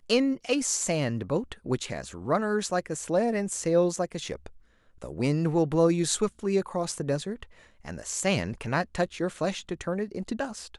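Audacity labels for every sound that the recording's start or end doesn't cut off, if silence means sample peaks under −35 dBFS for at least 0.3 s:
5.020000	7.430000	sound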